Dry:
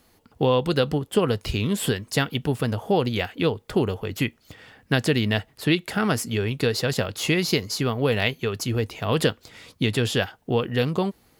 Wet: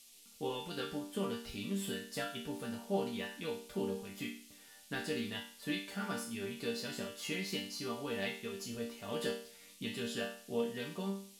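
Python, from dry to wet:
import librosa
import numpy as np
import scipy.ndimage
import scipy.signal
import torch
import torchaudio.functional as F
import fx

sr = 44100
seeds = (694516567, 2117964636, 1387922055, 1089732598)

y = fx.resonator_bank(x, sr, root=55, chord='minor', decay_s=0.47)
y = fx.dmg_noise_band(y, sr, seeds[0], low_hz=2500.0, high_hz=13000.0, level_db=-64.0)
y = F.gain(torch.from_numpy(y), 4.0).numpy()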